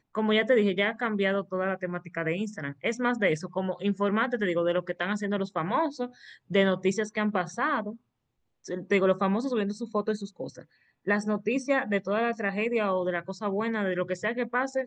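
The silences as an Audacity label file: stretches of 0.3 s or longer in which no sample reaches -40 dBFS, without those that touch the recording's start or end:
7.950000	8.650000	silence
10.610000	11.070000	silence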